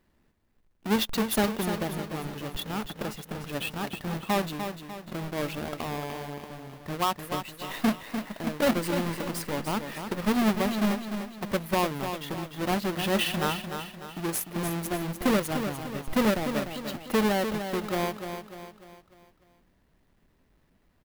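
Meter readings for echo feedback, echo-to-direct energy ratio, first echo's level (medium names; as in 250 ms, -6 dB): 45%, -7.0 dB, -8.0 dB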